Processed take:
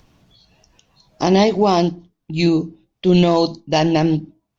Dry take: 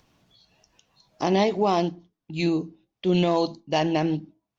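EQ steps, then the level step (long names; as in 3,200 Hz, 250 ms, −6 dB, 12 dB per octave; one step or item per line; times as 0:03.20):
low-shelf EQ 420 Hz +3.5 dB
dynamic equaliser 5,000 Hz, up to +6 dB, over −51 dBFS, Q 1.8
low-shelf EQ 71 Hz +7.5 dB
+5.0 dB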